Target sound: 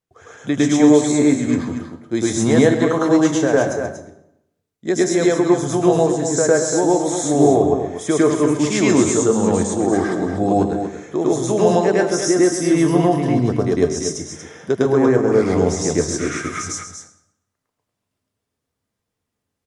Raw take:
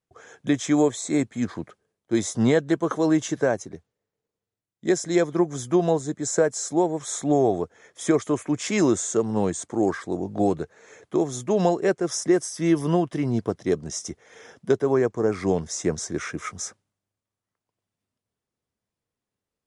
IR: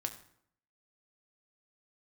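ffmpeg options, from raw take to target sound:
-filter_complex "[0:a]aecho=1:1:237:0.376,asplit=2[s0][s1];[1:a]atrim=start_sample=2205,asetrate=36162,aresample=44100,adelay=105[s2];[s1][s2]afir=irnorm=-1:irlink=0,volume=1.41[s3];[s0][s3]amix=inputs=2:normalize=0,volume=1.12"

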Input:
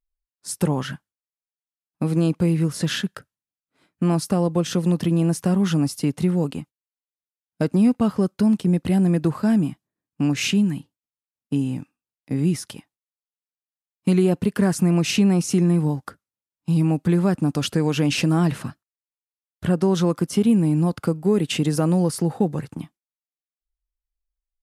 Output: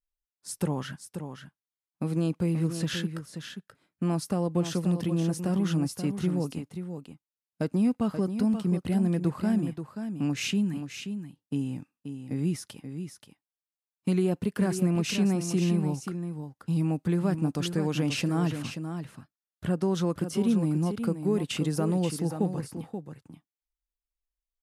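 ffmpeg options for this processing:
-af "aecho=1:1:531:0.376,volume=0.422"

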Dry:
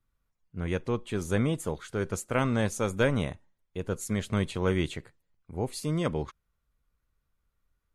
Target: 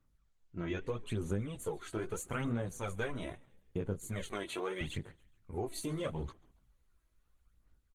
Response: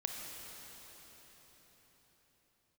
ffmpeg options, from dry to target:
-filter_complex "[0:a]asettb=1/sr,asplit=3[s0][s1][s2];[s0]atrim=end=4.314[s3];[s1]atrim=start=4.31:end=4.81,asetpts=PTS-STARTPTS,afade=t=in:d=0.004:c=qsin,afade=t=out:st=0.496:d=0.004:c=qsin,highpass=400[s4];[s2]atrim=start=4.806[s5];[s3][s4]acrossfade=d=0.004:c1=hsin:c2=qsin[s6];[s6][s5]acrossfade=d=0.004:c1=qsin:c2=hsin,flanger=delay=16:depth=4.7:speed=1.9,dynaudnorm=f=190:g=5:m=1.5,aphaser=in_gain=1:out_gain=1:delay=3.1:decay=0.64:speed=0.78:type=sinusoidal,acompressor=threshold=0.0178:ratio=4,asuperstop=centerf=5200:order=8:qfactor=4.7,asplit=4[s7][s8][s9][s10];[s8]adelay=139,afreqshift=-66,volume=0.0631[s11];[s9]adelay=278,afreqshift=-132,volume=0.0292[s12];[s10]adelay=417,afreqshift=-198,volume=0.0133[s13];[s7][s11][s12][s13]amix=inputs=4:normalize=0" -ar 48000 -c:a libopus -b:a 20k

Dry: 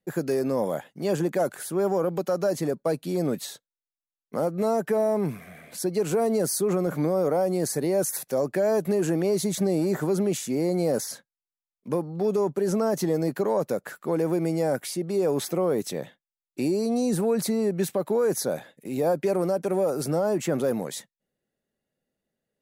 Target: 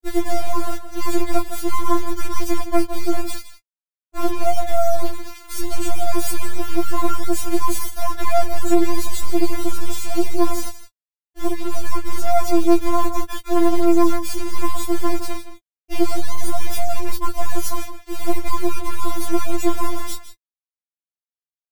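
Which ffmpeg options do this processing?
-filter_complex "[0:a]lowshelf=f=140:g=6.5,asplit=2[s0][s1];[s1]acompressor=threshold=0.0178:ratio=12,volume=0.794[s2];[s0][s2]amix=inputs=2:normalize=0,acrusher=bits=3:dc=4:mix=0:aa=0.000001,asplit=2[s3][s4];[s4]adelay=13,volume=0.316[s5];[s3][s5]amix=inputs=2:normalize=0,asplit=2[s6][s7];[s7]adelay=169.1,volume=0.282,highshelf=f=4000:g=-3.8[s8];[s6][s8]amix=inputs=2:normalize=0,asetrate=45938,aresample=44100,afftfilt=real='re*4*eq(mod(b,16),0)':imag='im*4*eq(mod(b,16),0)':win_size=2048:overlap=0.75,volume=2"

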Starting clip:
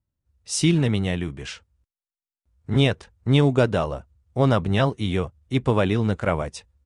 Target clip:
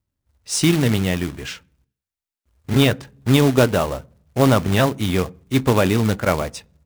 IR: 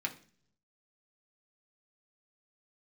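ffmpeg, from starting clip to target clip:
-filter_complex "[0:a]acrusher=bits=3:mode=log:mix=0:aa=0.000001,asplit=2[s0][s1];[1:a]atrim=start_sample=2205,highshelf=f=2100:g=-11[s2];[s1][s2]afir=irnorm=-1:irlink=0,volume=0.237[s3];[s0][s3]amix=inputs=2:normalize=0,volume=1.41"

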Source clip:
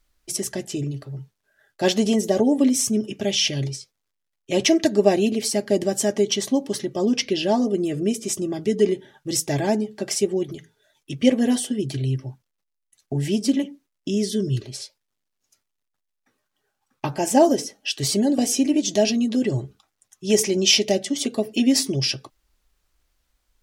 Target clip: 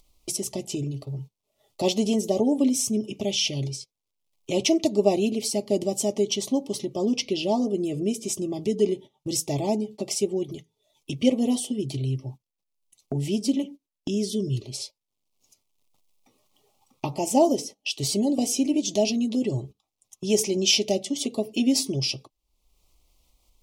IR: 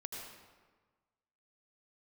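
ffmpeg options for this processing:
-af "asuperstop=centerf=1600:order=4:qfactor=1.3,acompressor=mode=upward:threshold=0.0794:ratio=2.5,agate=range=0.158:threshold=0.0178:ratio=16:detection=peak,volume=0.668"

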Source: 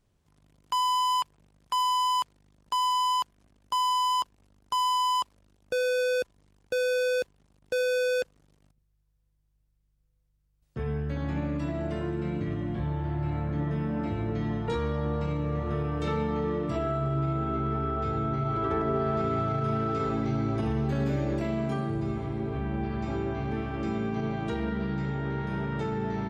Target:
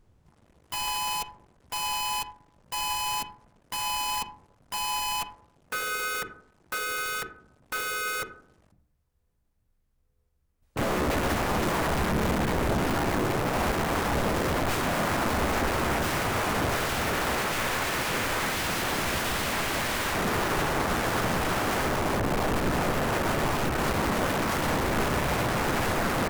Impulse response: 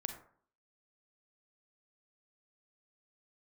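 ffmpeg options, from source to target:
-filter_complex "[0:a]bandreject=f=50:t=h:w=6,bandreject=f=100:t=h:w=6,bandreject=f=150:t=h:w=6,bandreject=f=200:t=h:w=6,bandreject=f=250:t=h:w=6,bandreject=f=300:t=h:w=6,bandreject=f=350:t=h:w=6,bandreject=f=400:t=h:w=6,bandreject=f=450:t=h:w=6,aeval=exprs='(mod(28.2*val(0)+1,2)-1)/28.2':c=same,asplit=2[s0][s1];[1:a]atrim=start_sample=2205,lowpass=2600,lowshelf=f=220:g=4.5[s2];[s1][s2]afir=irnorm=-1:irlink=0,volume=1.06[s3];[s0][s3]amix=inputs=2:normalize=0,asplit=2[s4][s5];[s5]asetrate=37084,aresample=44100,atempo=1.18921,volume=0.891[s6];[s4][s6]amix=inputs=2:normalize=0"

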